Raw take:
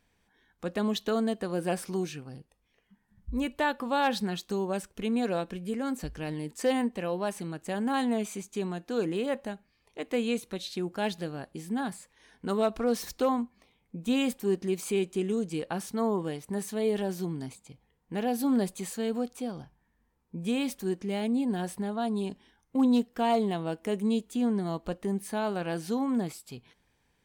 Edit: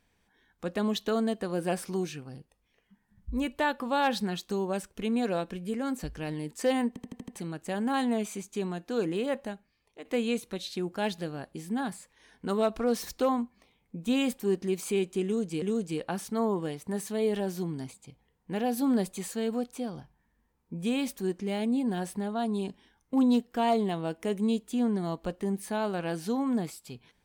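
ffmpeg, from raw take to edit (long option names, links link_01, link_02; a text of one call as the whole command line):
ffmpeg -i in.wav -filter_complex "[0:a]asplit=9[link_01][link_02][link_03][link_04][link_05][link_06][link_07][link_08][link_09];[link_01]atrim=end=6.962[link_10];[link_02]atrim=start=6.878:end=6.962[link_11];[link_03]atrim=start=6.878:end=6.962[link_12];[link_04]atrim=start=6.878:end=6.962[link_13];[link_05]atrim=start=6.878:end=6.962[link_14];[link_06]atrim=start=6.878:end=6.962[link_15];[link_07]atrim=start=7.358:end=10.05,asetpts=PTS-STARTPTS,afade=type=out:start_time=2.072:duration=0.62:silence=0.334965[link_16];[link_08]atrim=start=10.05:end=15.622,asetpts=PTS-STARTPTS,afade=type=in:duration=0.004:curve=hsin:silence=0.334965[link_17];[link_09]atrim=start=15.238[link_18];[link_10][link_11]acrossfade=duration=0.004:curve1=hsin:curve2=hsin[link_19];[link_19][link_12]acrossfade=duration=0.004:curve1=hsin:curve2=hsin[link_20];[link_20][link_13]acrossfade=duration=0.004:curve1=hsin:curve2=hsin[link_21];[link_21][link_14]acrossfade=duration=0.004:curve1=hsin:curve2=hsin[link_22];[link_22][link_15]acrossfade=duration=0.004:curve1=hsin:curve2=hsin[link_23];[link_16][link_17]concat=n=2:v=0:a=1[link_24];[link_23][link_24]acrossfade=duration=0.004:curve1=hsin:curve2=hsin[link_25];[link_25][link_18]acrossfade=duration=0.004:curve1=hsin:curve2=hsin" out.wav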